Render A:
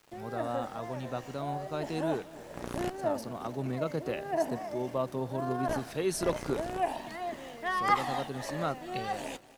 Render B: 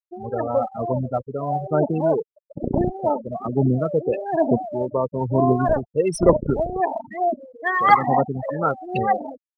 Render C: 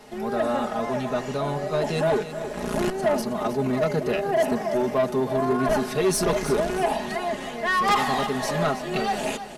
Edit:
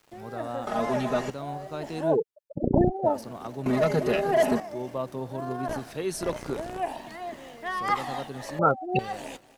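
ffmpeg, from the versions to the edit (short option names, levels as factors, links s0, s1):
-filter_complex "[2:a]asplit=2[s0][s1];[1:a]asplit=2[s2][s3];[0:a]asplit=5[s4][s5][s6][s7][s8];[s4]atrim=end=0.672[s9];[s0]atrim=start=0.668:end=1.302[s10];[s5]atrim=start=1.298:end=2.18[s11];[s2]atrim=start=2.02:end=3.18[s12];[s6]atrim=start=3.02:end=3.662[s13];[s1]atrim=start=3.658:end=4.602[s14];[s7]atrim=start=4.598:end=8.592[s15];[s3]atrim=start=8.588:end=8.992[s16];[s8]atrim=start=8.988[s17];[s9][s10]acrossfade=d=0.004:c1=hsin:c2=hsin[s18];[s18][s11]acrossfade=d=0.004:c1=hsin:c2=hsin[s19];[s19][s12]acrossfade=d=0.16:c1=tri:c2=tri[s20];[s20][s13]acrossfade=d=0.16:c1=tri:c2=tri[s21];[s21][s14]acrossfade=d=0.004:c1=hsin:c2=hsin[s22];[s22][s15]acrossfade=d=0.004:c1=hsin:c2=hsin[s23];[s23][s16]acrossfade=d=0.004:c1=hsin:c2=hsin[s24];[s24][s17]acrossfade=d=0.004:c1=hsin:c2=hsin"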